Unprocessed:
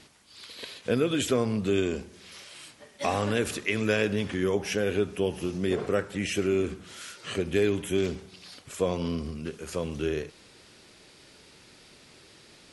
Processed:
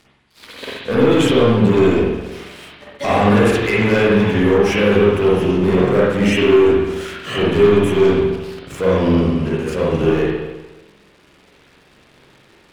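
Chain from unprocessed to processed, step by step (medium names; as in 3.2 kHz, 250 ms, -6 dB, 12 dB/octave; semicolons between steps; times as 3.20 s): treble shelf 4.3 kHz -9 dB; waveshaping leveller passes 3; spring tank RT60 1.1 s, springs 44/59 ms, chirp 60 ms, DRR -6.5 dB; trim -1.5 dB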